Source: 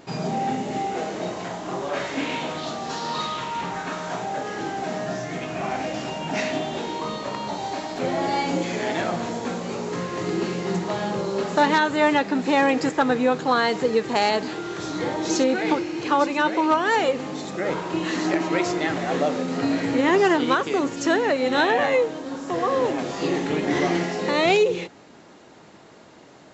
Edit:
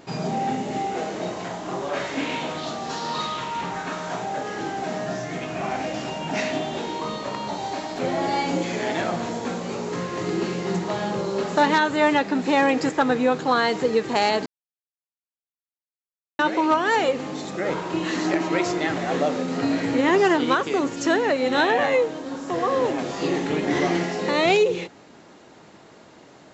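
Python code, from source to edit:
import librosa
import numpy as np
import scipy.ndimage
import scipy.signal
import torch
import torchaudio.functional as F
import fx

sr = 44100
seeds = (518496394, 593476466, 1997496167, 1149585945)

y = fx.edit(x, sr, fx.silence(start_s=14.46, length_s=1.93), tone=tone)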